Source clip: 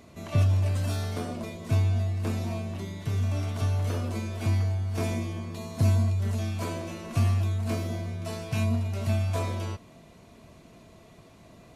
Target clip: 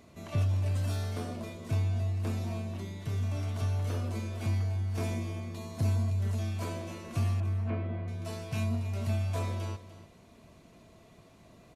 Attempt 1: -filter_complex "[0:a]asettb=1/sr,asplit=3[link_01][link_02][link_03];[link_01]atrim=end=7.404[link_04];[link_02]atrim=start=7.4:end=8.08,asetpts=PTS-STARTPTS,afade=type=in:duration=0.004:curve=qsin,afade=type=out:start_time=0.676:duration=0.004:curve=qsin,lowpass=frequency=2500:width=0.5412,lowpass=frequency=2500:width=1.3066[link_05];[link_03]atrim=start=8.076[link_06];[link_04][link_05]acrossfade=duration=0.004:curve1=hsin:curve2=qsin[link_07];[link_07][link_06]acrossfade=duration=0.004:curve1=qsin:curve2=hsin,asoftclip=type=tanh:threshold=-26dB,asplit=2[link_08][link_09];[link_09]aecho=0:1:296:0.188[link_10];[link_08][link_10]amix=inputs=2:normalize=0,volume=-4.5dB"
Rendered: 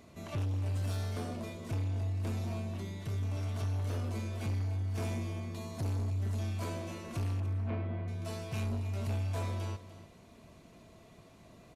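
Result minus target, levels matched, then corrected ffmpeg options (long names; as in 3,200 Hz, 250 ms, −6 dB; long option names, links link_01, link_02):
soft clipping: distortion +14 dB
-filter_complex "[0:a]asettb=1/sr,asplit=3[link_01][link_02][link_03];[link_01]atrim=end=7.404[link_04];[link_02]atrim=start=7.4:end=8.08,asetpts=PTS-STARTPTS,afade=type=in:duration=0.004:curve=qsin,afade=type=out:start_time=0.676:duration=0.004:curve=qsin,lowpass=frequency=2500:width=0.5412,lowpass=frequency=2500:width=1.3066[link_05];[link_03]atrim=start=8.076[link_06];[link_04][link_05]acrossfade=duration=0.004:curve1=hsin:curve2=qsin[link_07];[link_07][link_06]acrossfade=duration=0.004:curve1=qsin:curve2=hsin,asoftclip=type=tanh:threshold=-15dB,asplit=2[link_08][link_09];[link_09]aecho=0:1:296:0.188[link_10];[link_08][link_10]amix=inputs=2:normalize=0,volume=-4.5dB"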